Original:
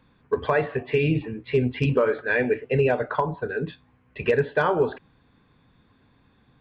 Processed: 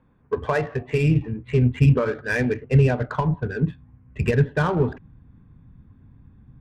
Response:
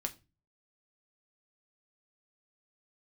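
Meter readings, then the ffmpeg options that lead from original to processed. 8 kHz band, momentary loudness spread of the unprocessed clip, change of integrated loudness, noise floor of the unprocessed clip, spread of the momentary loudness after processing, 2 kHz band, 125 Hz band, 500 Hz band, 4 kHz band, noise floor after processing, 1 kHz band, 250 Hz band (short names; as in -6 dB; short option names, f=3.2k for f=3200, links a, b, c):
n/a, 8 LU, +2.0 dB, -62 dBFS, 8 LU, -1.0 dB, +9.0 dB, -2.5 dB, -1.0 dB, -55 dBFS, -1.5 dB, +4.5 dB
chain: -af "asubboost=boost=7:cutoff=190,adynamicsmooth=sensitivity=3.5:basefreq=1.6k"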